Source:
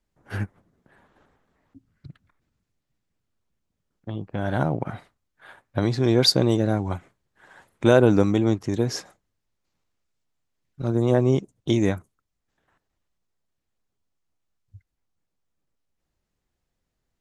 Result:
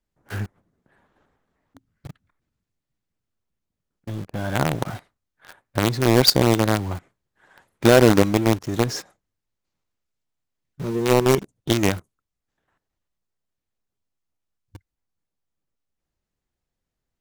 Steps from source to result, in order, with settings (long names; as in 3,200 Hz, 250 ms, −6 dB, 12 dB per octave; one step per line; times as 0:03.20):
0:10.81–0:11.38: EQ curve with evenly spaced ripples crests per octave 0.81, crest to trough 10 dB
in parallel at −5 dB: log-companded quantiser 2 bits
on the sum: level −4 dB